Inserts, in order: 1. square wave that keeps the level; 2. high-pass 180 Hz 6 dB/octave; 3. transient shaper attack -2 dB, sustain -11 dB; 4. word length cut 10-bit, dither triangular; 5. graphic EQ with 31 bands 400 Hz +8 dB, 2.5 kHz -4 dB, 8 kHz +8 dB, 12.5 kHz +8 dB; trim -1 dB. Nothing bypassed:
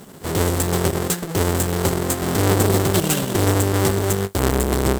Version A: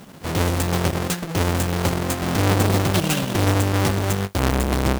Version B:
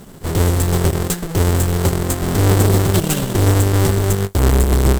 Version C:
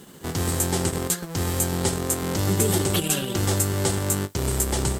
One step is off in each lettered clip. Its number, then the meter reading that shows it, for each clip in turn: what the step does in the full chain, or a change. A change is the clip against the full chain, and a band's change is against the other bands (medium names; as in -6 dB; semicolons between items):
5, 8 kHz band -5.0 dB; 2, crest factor change -7.0 dB; 1, distortion -7 dB